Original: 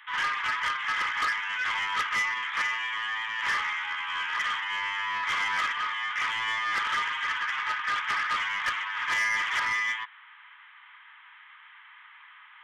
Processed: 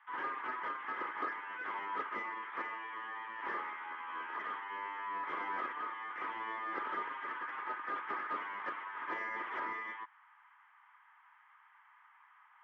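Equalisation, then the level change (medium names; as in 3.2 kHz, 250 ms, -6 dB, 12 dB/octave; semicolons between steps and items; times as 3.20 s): ladder band-pass 400 Hz, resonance 45%; +12.5 dB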